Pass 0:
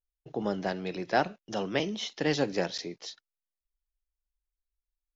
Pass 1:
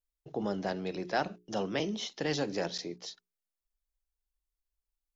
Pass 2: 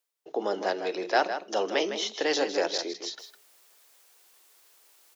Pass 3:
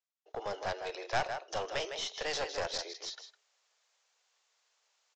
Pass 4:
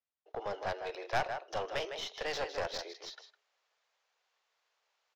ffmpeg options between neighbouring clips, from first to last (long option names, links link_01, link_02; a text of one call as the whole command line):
ffmpeg -i in.wav -filter_complex "[0:a]acrossover=split=1000[link_01][link_02];[link_01]alimiter=limit=-22.5dB:level=0:latency=1[link_03];[link_03][link_02]amix=inputs=2:normalize=0,equalizer=frequency=2200:width_type=o:width=1.7:gain=-4.5,bandreject=frequency=60:width_type=h:width=6,bandreject=frequency=120:width_type=h:width=6,bandreject=frequency=180:width_type=h:width=6,bandreject=frequency=240:width_type=h:width=6,bandreject=frequency=300:width_type=h:width=6,bandreject=frequency=360:width_type=h:width=6,bandreject=frequency=420:width_type=h:width=6" out.wav
ffmpeg -i in.wav -filter_complex "[0:a]highpass=frequency=340:width=0.5412,highpass=frequency=340:width=1.3066,areverse,acompressor=mode=upward:threshold=-45dB:ratio=2.5,areverse,asplit=2[link_01][link_02];[link_02]adelay=157.4,volume=-9dB,highshelf=frequency=4000:gain=-3.54[link_03];[link_01][link_03]amix=inputs=2:normalize=0,volume=7dB" out.wav
ffmpeg -i in.wav -af "highpass=frequency=500:width=0.5412,highpass=frequency=500:width=1.3066,agate=range=-6dB:threshold=-48dB:ratio=16:detection=peak,aresample=16000,aeval=exprs='clip(val(0),-1,0.0266)':channel_layout=same,aresample=44100,volume=-4.5dB" out.wav
ffmpeg -i in.wav -af "adynamicsmooth=sensitivity=3:basefreq=4100" out.wav